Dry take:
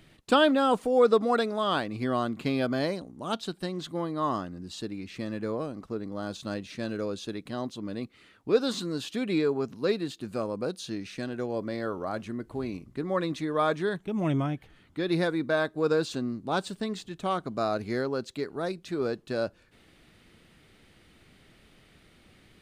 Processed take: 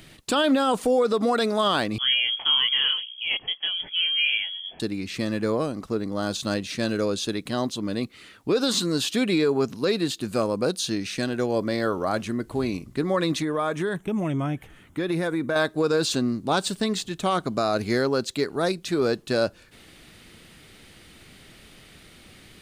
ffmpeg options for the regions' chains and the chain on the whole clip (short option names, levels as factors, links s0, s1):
-filter_complex "[0:a]asettb=1/sr,asplit=3[s0][s1][s2];[s0]atrim=end=1.984[s3];[s1]atrim=start=1.98:end=4.8,asetpts=PTS-STARTPTS,afade=t=in:d=0.004:c=qsin,afade=t=out:st=2.816:d=0.004:c=qsin,highpass=f=190:p=1,flanger=delay=17.5:depth=5.3:speed=1.6,lowpass=f=3000:t=q:w=0.5098,lowpass=f=3000:t=q:w=0.6013,lowpass=f=3000:t=q:w=0.9,lowpass=f=3000:t=q:w=2.563,afreqshift=-3500[s4];[s2]atrim=start=4.796[s5];[s3][s4]acrossfade=d=0.004:c1=hsin:c2=qsin[s6];[s6][s5]acrossfade=d=0.004:c1=qsin:c2=hsin,asettb=1/sr,asplit=3[s7][s8][s9];[s7]atrim=end=13.424[s10];[s8]atrim=start=13.42:end=15.56,asetpts=PTS-STARTPTS,afade=t=in:d=0.004:c=qsin,afade=t=out:st=2.136:d=0.004:c=qsin,equalizer=f=4400:w=2.2:g=-12,acompressor=threshold=0.0355:ratio=5:attack=3.2:release=140:knee=1:detection=peak[s11];[s9]atrim=start=15.556[s12];[s10][s11]acrossfade=d=0.004:c1=hsin:c2=qsin[s13];[s13][s12]acrossfade=d=0.004:c1=qsin:c2=hsin,highshelf=f=3300:g=8,alimiter=limit=0.1:level=0:latency=1:release=61,volume=2.24"